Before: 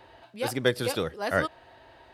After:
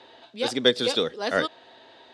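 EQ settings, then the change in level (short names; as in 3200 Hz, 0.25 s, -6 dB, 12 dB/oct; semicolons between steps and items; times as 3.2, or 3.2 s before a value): speaker cabinet 190–7100 Hz, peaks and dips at 240 Hz +7 dB, 450 Hz +6 dB, 3600 Hz +10 dB; high shelf 5300 Hz +10 dB; 0.0 dB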